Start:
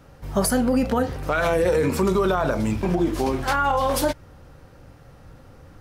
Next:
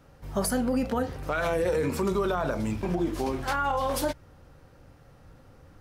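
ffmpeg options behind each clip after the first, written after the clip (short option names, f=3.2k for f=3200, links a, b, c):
-af "bandreject=f=62.33:t=h:w=4,bandreject=f=124.66:t=h:w=4,bandreject=f=186.99:t=h:w=4,volume=-6dB"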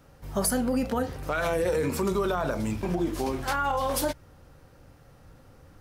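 -af "highshelf=f=6.3k:g=5.5"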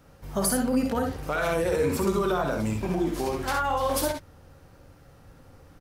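-af "aecho=1:1:55|66:0.376|0.473"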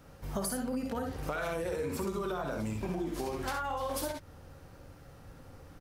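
-af "acompressor=threshold=-32dB:ratio=6"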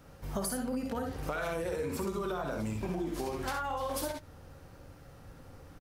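-af "aecho=1:1:84:0.075"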